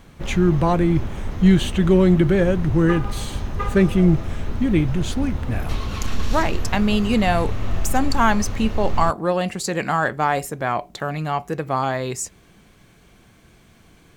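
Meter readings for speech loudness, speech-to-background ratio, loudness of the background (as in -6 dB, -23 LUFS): -21.0 LUFS, 8.5 dB, -29.5 LUFS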